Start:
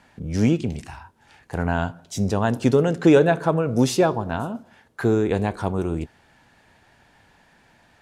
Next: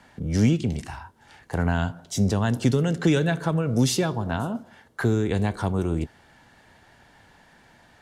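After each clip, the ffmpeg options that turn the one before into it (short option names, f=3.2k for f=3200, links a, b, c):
-filter_complex "[0:a]bandreject=f=2.5k:w=13,acrossover=split=220|1800[a][b][c];[b]acompressor=threshold=-28dB:ratio=6[d];[a][d][c]amix=inputs=3:normalize=0,volume=2dB"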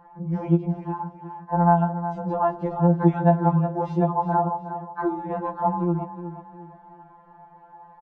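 -af "lowpass=f=920:t=q:w=11,aecho=1:1:363|726|1089|1452:0.266|0.0931|0.0326|0.0114,afftfilt=real='re*2.83*eq(mod(b,8),0)':imag='im*2.83*eq(mod(b,8),0)':win_size=2048:overlap=0.75"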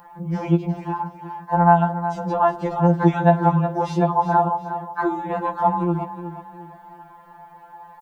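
-af "crystalizer=i=9:c=0,volume=1dB"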